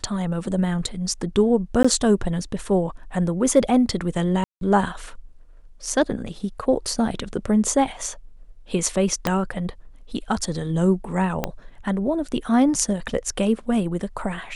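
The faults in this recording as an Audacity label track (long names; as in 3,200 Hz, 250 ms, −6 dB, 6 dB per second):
1.830000	1.840000	drop-out 15 ms
4.440000	4.610000	drop-out 172 ms
9.270000	9.270000	click −6 dBFS
11.440000	11.440000	click −8 dBFS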